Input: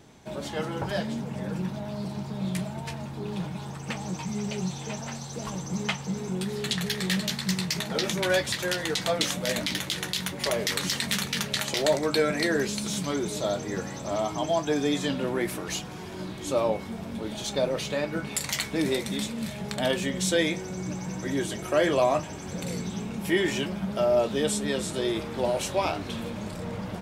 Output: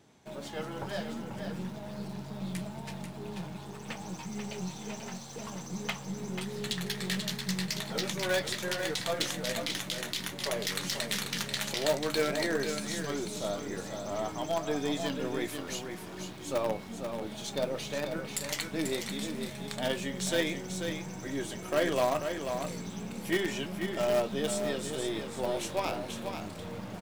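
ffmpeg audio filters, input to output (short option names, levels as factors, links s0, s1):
-filter_complex "[0:a]highpass=f=97:p=1,asplit=2[s0][s1];[s1]acrusher=bits=4:dc=4:mix=0:aa=0.000001,volume=0.447[s2];[s0][s2]amix=inputs=2:normalize=0,aecho=1:1:489:0.447,volume=0.398"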